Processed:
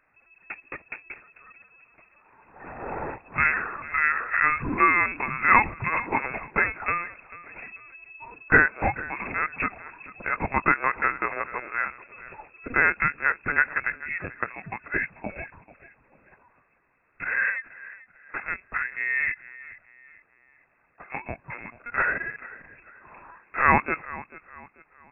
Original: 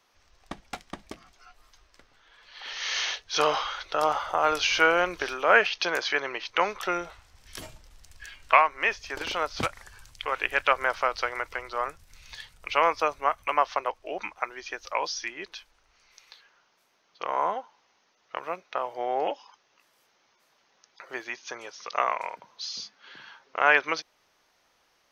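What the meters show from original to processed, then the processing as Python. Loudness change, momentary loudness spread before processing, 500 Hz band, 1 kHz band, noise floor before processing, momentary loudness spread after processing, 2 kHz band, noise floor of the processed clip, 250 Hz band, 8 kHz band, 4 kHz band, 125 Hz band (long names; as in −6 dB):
+2.0 dB, 21 LU, −6.5 dB, 0.0 dB, −68 dBFS, 22 LU, +5.0 dB, −65 dBFS, +5.5 dB, below −40 dB, below −30 dB, +12.0 dB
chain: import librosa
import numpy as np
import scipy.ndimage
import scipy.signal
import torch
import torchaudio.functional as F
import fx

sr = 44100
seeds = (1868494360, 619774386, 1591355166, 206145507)

y = fx.echo_feedback(x, sr, ms=440, feedback_pct=36, wet_db=-18)
y = fx.lpc_vocoder(y, sr, seeds[0], excitation='pitch_kept', order=16)
y = fx.freq_invert(y, sr, carrier_hz=2600)
y = y * librosa.db_to_amplitude(1.5)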